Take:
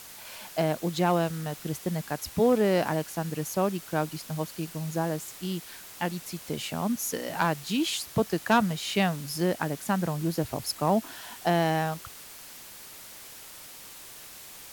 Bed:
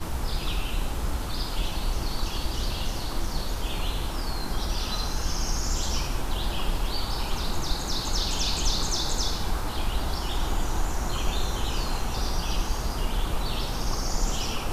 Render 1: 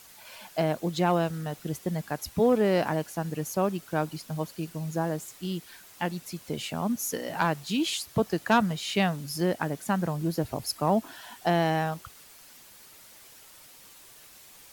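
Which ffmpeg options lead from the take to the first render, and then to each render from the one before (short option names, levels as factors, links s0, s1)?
-af "afftdn=nr=7:nf=-46"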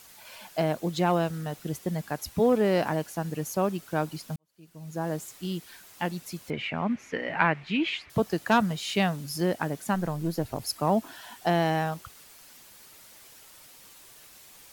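-filter_complex "[0:a]asettb=1/sr,asplit=3[s0][s1][s2];[s0]atrim=end=6.504[s3];[s1]atrim=start=6.5:end=8.1,asetpts=PTS-STARTPTS,afade=t=in:d=0.004:c=qsin,afade=t=out:st=1.596:d=0.004:c=qsin,lowpass=f=2200:t=q:w=3.6[s4];[s2]atrim=start=8.096[s5];[s3][s4]acrossfade=d=0.004:c1=hsin:c2=qsin[s6];[s6][s5]acrossfade=d=0.004:c1=qsin:c2=hsin,asettb=1/sr,asplit=3[s7][s8][s9];[s7]atrim=end=9.944[s10];[s8]atrim=start=9.94:end=10.61,asetpts=PTS-STARTPTS,afade=t=in:d=0.004:c=qsin,afade=t=out:st=0.666:d=0.004:c=qsin,aeval=exprs='if(lt(val(0),0),0.708*val(0),val(0))':c=same[s11];[s9]atrim=start=10.606[s12];[s10][s11]acrossfade=d=0.004:c1=hsin:c2=qsin[s13];[s13][s12]acrossfade=d=0.004:c1=qsin:c2=hsin,asplit=2[s14][s15];[s14]atrim=end=4.36,asetpts=PTS-STARTPTS,afade=t=out:st=4.356:d=0.004:c=hsin[s16];[s15]atrim=start=4.36,asetpts=PTS-STARTPTS,afade=t=in:d=0.77:c=qua[s17];[s16][s17]concat=n=2:v=0:a=1"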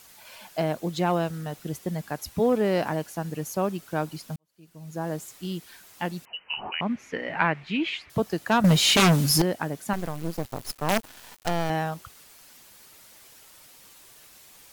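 -filter_complex "[0:a]asettb=1/sr,asplit=3[s0][s1][s2];[s0]atrim=end=6.254[s3];[s1]atrim=start=6.25:end=6.81,asetpts=PTS-STARTPTS,afade=t=in:d=0.004:c=qsin,afade=t=out:st=0.556:d=0.004:c=qsin,lowpass=f=2600:t=q:w=0.5098,lowpass=f=2600:t=q:w=0.6013,lowpass=f=2600:t=q:w=0.9,lowpass=f=2600:t=q:w=2.563,afreqshift=-3100[s4];[s2]atrim=start=6.806[s5];[s3][s4]acrossfade=d=0.004:c1=hsin:c2=qsin[s6];[s6][s5]acrossfade=d=0.004:c1=qsin:c2=hsin,asettb=1/sr,asplit=3[s7][s8][s9];[s7]atrim=end=8.644[s10];[s8]atrim=start=8.64:end=9.42,asetpts=PTS-STARTPTS,afade=t=in:d=0.004:c=qsin,afade=t=out:st=0.776:d=0.004:c=qsin,aeval=exprs='0.2*sin(PI/2*3.55*val(0)/0.2)':c=same[s11];[s9]atrim=start=9.416[s12];[s10][s11]acrossfade=d=0.004:c1=hsin:c2=qsin[s13];[s13][s12]acrossfade=d=0.004:c1=qsin:c2=hsin,asettb=1/sr,asplit=3[s14][s15][s16];[s14]atrim=end=9.934[s17];[s15]atrim=start=9.93:end=11.7,asetpts=PTS-STARTPTS,afade=t=in:d=0.004:c=qsin,afade=t=out:st=1.766:d=0.004:c=qsin,acrusher=bits=4:dc=4:mix=0:aa=0.000001[s18];[s16]atrim=start=11.696[s19];[s17][s18]acrossfade=d=0.004:c1=hsin:c2=qsin[s20];[s20][s19]acrossfade=d=0.004:c1=qsin:c2=hsin"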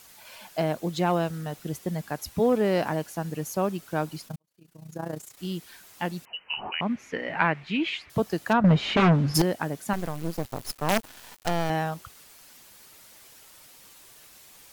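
-filter_complex "[0:a]asplit=3[s0][s1][s2];[s0]afade=t=out:st=4.26:d=0.02[s3];[s1]tremolo=f=29:d=0.788,afade=t=in:st=4.26:d=0.02,afade=t=out:st=5.37:d=0.02[s4];[s2]afade=t=in:st=5.37:d=0.02[s5];[s3][s4][s5]amix=inputs=3:normalize=0,asplit=3[s6][s7][s8];[s6]afade=t=out:st=8.52:d=0.02[s9];[s7]lowpass=1900,afade=t=in:st=8.52:d=0.02,afade=t=out:st=9.34:d=0.02[s10];[s8]afade=t=in:st=9.34:d=0.02[s11];[s9][s10][s11]amix=inputs=3:normalize=0"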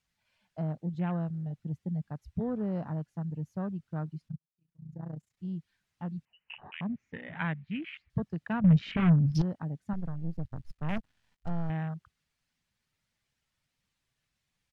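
-af "afwtdn=0.0251,firequalizer=gain_entry='entry(150,0);entry(340,-15);entry(1100,-14);entry(1800,-9);entry(14000,-28)':delay=0.05:min_phase=1"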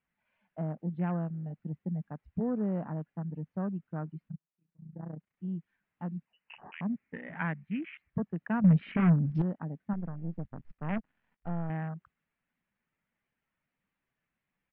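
-af "lowpass=f=2400:w=0.5412,lowpass=f=2400:w=1.3066,lowshelf=f=150:t=q:w=1.5:g=-7"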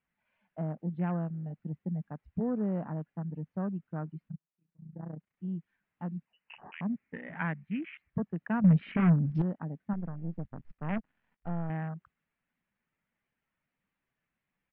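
-af anull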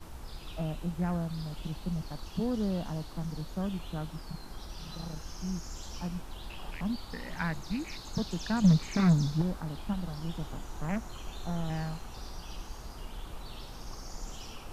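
-filter_complex "[1:a]volume=0.178[s0];[0:a][s0]amix=inputs=2:normalize=0"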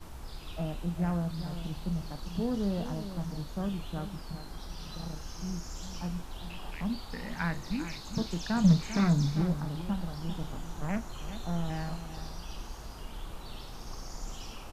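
-filter_complex "[0:a]asplit=2[s0][s1];[s1]adelay=35,volume=0.251[s2];[s0][s2]amix=inputs=2:normalize=0,asplit=2[s3][s4];[s4]adelay=396.5,volume=0.282,highshelf=f=4000:g=-8.92[s5];[s3][s5]amix=inputs=2:normalize=0"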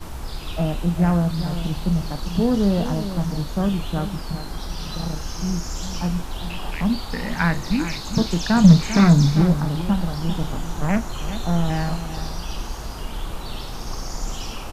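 -af "volume=3.98,alimiter=limit=0.794:level=0:latency=1"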